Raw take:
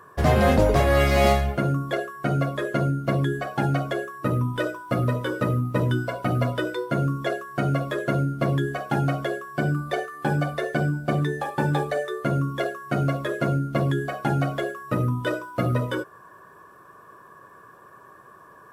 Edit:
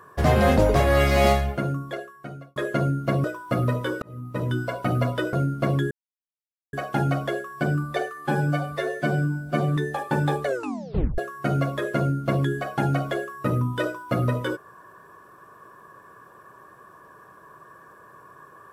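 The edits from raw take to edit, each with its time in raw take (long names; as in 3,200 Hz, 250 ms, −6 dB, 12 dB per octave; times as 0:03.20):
0:01.30–0:02.56: fade out linear
0:03.24–0:04.64: remove
0:05.42–0:06.09: fade in
0:06.73–0:08.12: remove
0:08.70: splice in silence 0.82 s
0:10.24–0:11.24: time-stretch 1.5×
0:11.92: tape stop 0.73 s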